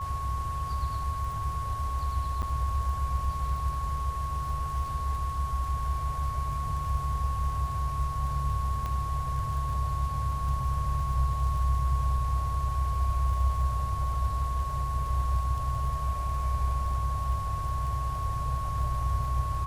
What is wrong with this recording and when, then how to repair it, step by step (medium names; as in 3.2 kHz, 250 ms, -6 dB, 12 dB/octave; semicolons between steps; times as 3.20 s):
crackle 25 per s -37 dBFS
whine 1.1 kHz -33 dBFS
2.42–2.43 s: dropout 8.1 ms
8.86 s: pop -22 dBFS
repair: de-click; band-stop 1.1 kHz, Q 30; interpolate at 2.42 s, 8.1 ms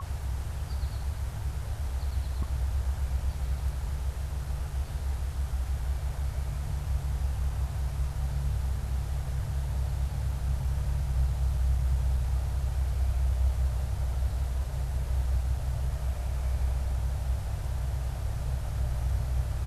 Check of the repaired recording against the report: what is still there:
nothing left